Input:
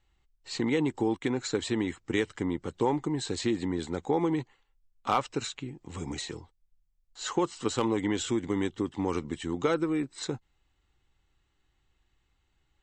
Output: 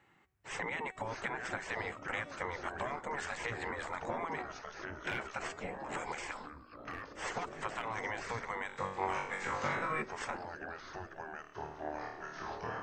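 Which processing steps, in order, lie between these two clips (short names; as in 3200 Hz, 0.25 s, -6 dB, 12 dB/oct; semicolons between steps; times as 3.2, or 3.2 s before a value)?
spectral gate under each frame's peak -15 dB weak; resonant high shelf 2700 Hz -10 dB, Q 1.5; de-hum 376.3 Hz, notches 35; in parallel at +0.5 dB: limiter -32 dBFS, peak gain reduction 10.5 dB; on the sum: compressor 4:1, threshold -42 dBFS, peak gain reduction 12 dB; 8.67–10.02 flutter echo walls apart 3.6 m, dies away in 0.58 s; echoes that change speed 0.488 s, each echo -4 st, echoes 3, each echo -6 dB; gain +5 dB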